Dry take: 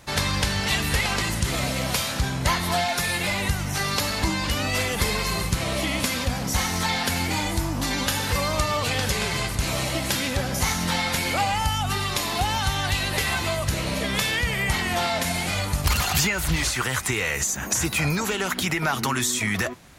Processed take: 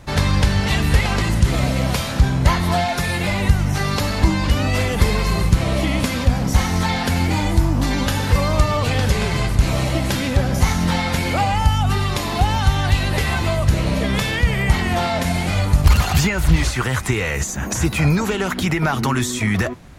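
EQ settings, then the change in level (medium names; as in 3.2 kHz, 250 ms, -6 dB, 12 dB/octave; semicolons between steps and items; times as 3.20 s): tilt EQ -2 dB/octave; +3.5 dB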